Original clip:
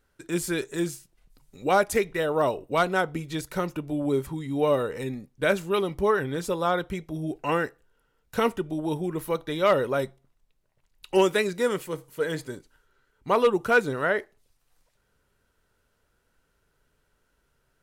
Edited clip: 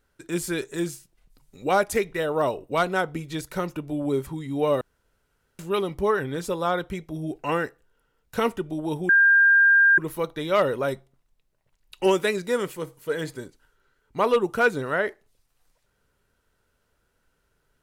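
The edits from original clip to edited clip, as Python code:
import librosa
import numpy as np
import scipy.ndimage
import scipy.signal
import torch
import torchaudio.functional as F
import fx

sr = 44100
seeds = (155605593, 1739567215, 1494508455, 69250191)

y = fx.edit(x, sr, fx.room_tone_fill(start_s=4.81, length_s=0.78),
    fx.insert_tone(at_s=9.09, length_s=0.89, hz=1600.0, db=-13.0), tone=tone)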